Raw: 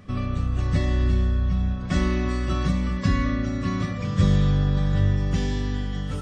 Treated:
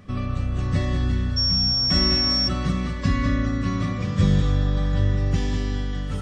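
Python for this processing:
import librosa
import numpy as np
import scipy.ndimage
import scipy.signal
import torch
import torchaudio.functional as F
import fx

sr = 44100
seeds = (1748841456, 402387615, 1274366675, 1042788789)

y = x + 10.0 ** (-7.0 / 20.0) * np.pad(x, (int(201 * sr / 1000.0), 0))[:len(x)]
y = fx.dmg_tone(y, sr, hz=5500.0, level_db=-19.0, at=(1.36, 2.47), fade=0.02)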